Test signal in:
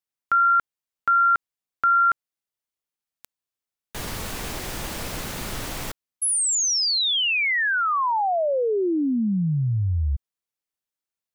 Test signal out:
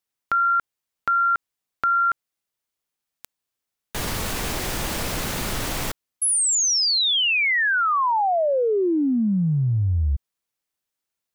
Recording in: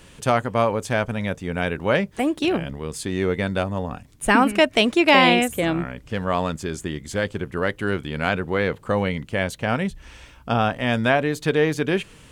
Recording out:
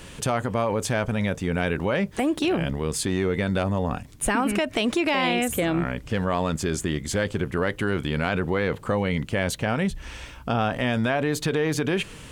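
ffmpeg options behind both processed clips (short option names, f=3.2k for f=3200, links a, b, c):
-af "acompressor=threshold=-23dB:ratio=10:attack=1.1:release=78:knee=6:detection=peak,volume=5.5dB"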